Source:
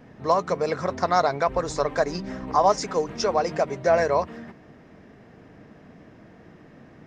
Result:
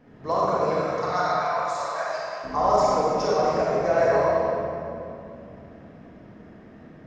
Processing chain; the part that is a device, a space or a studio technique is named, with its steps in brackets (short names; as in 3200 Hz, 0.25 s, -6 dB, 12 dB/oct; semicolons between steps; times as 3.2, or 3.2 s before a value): 0.82–2.44 HPF 740 Hz 24 dB/oct; swimming-pool hall (reverb RT60 2.7 s, pre-delay 31 ms, DRR -6.5 dB; high shelf 5500 Hz -6 dB); gain -6.5 dB